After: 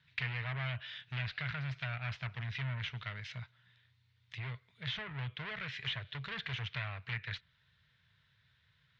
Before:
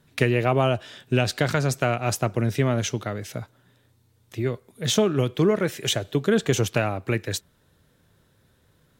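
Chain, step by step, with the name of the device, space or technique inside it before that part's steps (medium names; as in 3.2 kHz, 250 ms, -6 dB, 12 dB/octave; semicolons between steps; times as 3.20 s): 5.01–5.48 s: treble shelf 3.1 kHz -10 dB; scooped metal amplifier (valve stage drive 28 dB, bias 0.55; cabinet simulation 85–3800 Hz, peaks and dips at 130 Hz +6 dB, 360 Hz -7 dB, 540 Hz -9 dB, 780 Hz -9 dB, 1.2 kHz -4 dB, 2 kHz +4 dB; amplifier tone stack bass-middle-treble 10-0-10); low-pass that closes with the level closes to 2.6 kHz, closed at -38.5 dBFS; trim +4.5 dB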